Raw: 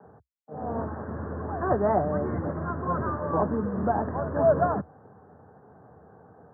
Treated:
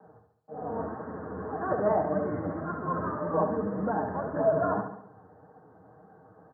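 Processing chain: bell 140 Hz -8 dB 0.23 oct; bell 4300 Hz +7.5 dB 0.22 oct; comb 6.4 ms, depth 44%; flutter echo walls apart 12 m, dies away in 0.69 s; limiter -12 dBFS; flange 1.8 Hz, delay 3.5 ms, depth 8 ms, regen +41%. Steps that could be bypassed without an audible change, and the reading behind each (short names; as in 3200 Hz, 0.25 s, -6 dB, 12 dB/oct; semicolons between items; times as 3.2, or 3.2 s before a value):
bell 4300 Hz: input band ends at 1600 Hz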